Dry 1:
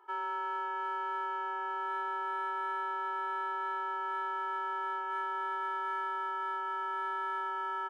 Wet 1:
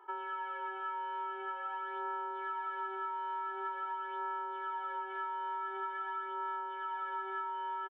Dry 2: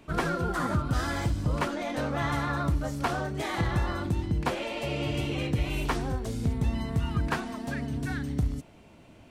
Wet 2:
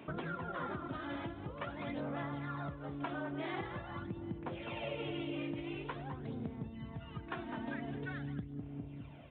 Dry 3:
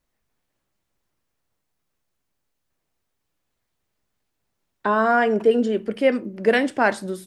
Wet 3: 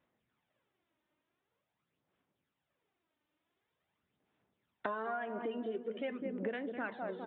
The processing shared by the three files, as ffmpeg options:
-filter_complex "[0:a]asplit=2[s0][s1];[s1]adelay=204,lowpass=f=910:p=1,volume=0.447,asplit=2[s2][s3];[s3]adelay=204,lowpass=f=910:p=1,volume=0.54,asplit=2[s4][s5];[s5]adelay=204,lowpass=f=910:p=1,volume=0.54,asplit=2[s6][s7];[s7]adelay=204,lowpass=f=910:p=1,volume=0.54,asplit=2[s8][s9];[s9]adelay=204,lowpass=f=910:p=1,volume=0.54,asplit=2[s10][s11];[s11]adelay=204,lowpass=f=910:p=1,volume=0.54,asplit=2[s12][s13];[s13]adelay=204,lowpass=f=910:p=1,volume=0.54[s14];[s2][s4][s6][s8][s10][s12][s14]amix=inputs=7:normalize=0[s15];[s0][s15]amix=inputs=2:normalize=0,aphaser=in_gain=1:out_gain=1:delay=3.3:decay=0.51:speed=0.46:type=sinusoidal,acompressor=threshold=0.0251:ratio=16,aresample=8000,aresample=44100,highpass=140,volume=0.708"

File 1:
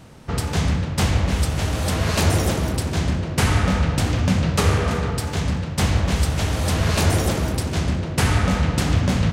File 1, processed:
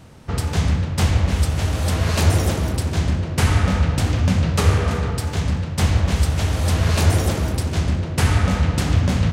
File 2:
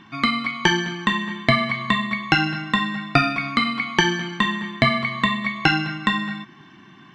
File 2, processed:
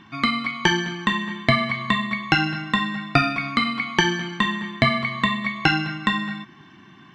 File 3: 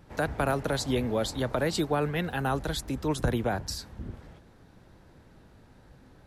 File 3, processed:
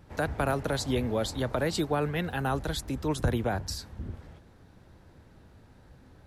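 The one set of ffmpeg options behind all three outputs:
-af "equalizer=f=83:w=2.4:g=5.5,volume=0.891"

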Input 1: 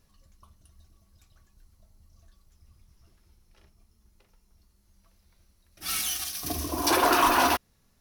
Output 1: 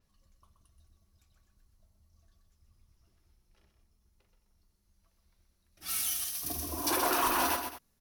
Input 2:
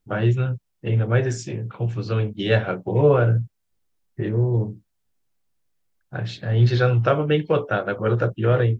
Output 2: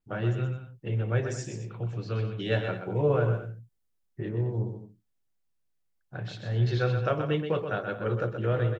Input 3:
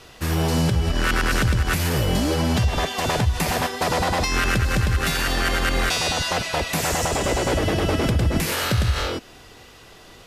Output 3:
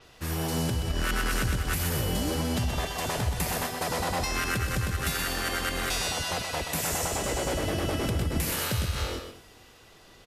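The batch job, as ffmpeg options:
-af "aecho=1:1:126|216:0.422|0.178,adynamicequalizer=threshold=0.00794:dfrequency=7300:dqfactor=0.7:tfrequency=7300:tqfactor=0.7:attack=5:release=100:ratio=0.375:range=4:mode=boostabove:tftype=highshelf,volume=0.376"

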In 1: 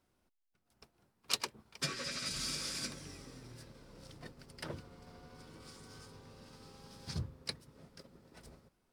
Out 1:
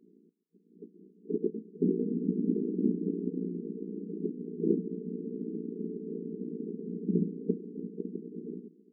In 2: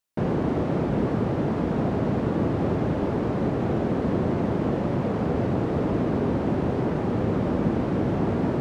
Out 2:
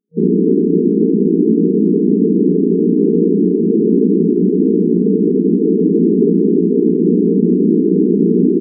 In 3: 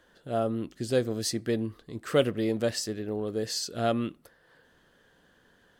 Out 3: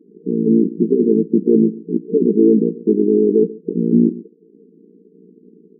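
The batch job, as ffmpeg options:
-filter_complex "[0:a]asplit=2[s0][s1];[s1]adelay=139.9,volume=0.0891,highshelf=f=4000:g=-3.15[s2];[s0][s2]amix=inputs=2:normalize=0,apsyclip=16.8,tremolo=f=58:d=0.889,aeval=exprs='1.06*sin(PI/2*1.41*val(0)/1.06)':c=same,afftfilt=real='re*between(b*sr/4096,170,470)':imag='im*between(b*sr/4096,170,470)':win_size=4096:overlap=0.75,volume=0.531"

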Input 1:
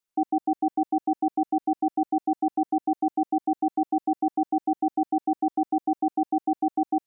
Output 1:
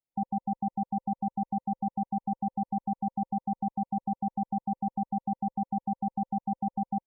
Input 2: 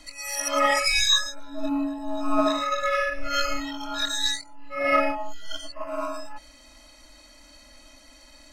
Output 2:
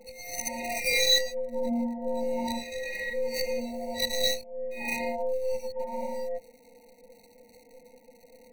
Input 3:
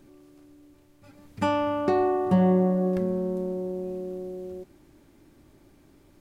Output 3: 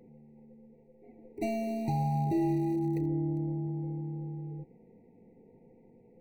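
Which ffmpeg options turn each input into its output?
-filter_complex "[0:a]afftfilt=real='real(if(between(b,1,1008),(2*floor((b-1)/24)+1)*24-b,b),0)':imag='imag(if(between(b,1,1008),(2*floor((b-1)/24)+1)*24-b,b),0)*if(between(b,1,1008),-1,1)':win_size=2048:overlap=0.75,acrossover=split=1900[s0][s1];[s0]alimiter=limit=0.1:level=0:latency=1:release=19[s2];[s1]acrusher=bits=5:dc=4:mix=0:aa=0.000001[s3];[s2][s3]amix=inputs=2:normalize=0,afftfilt=real='re*eq(mod(floor(b*sr/1024/940),2),0)':imag='im*eq(mod(floor(b*sr/1024/940),2),0)':win_size=1024:overlap=0.75,volume=0.794"

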